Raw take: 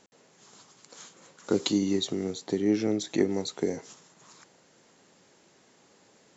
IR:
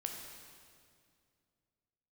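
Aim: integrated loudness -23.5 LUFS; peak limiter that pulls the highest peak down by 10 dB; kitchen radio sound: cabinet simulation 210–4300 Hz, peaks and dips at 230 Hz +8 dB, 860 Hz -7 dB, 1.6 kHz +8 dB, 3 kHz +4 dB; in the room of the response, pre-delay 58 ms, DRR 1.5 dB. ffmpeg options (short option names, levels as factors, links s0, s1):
-filter_complex "[0:a]alimiter=limit=0.1:level=0:latency=1,asplit=2[s0][s1];[1:a]atrim=start_sample=2205,adelay=58[s2];[s1][s2]afir=irnorm=-1:irlink=0,volume=0.891[s3];[s0][s3]amix=inputs=2:normalize=0,highpass=210,equalizer=f=230:t=q:w=4:g=8,equalizer=f=860:t=q:w=4:g=-7,equalizer=f=1600:t=q:w=4:g=8,equalizer=f=3000:t=q:w=4:g=4,lowpass=f=4300:w=0.5412,lowpass=f=4300:w=1.3066,volume=1.88"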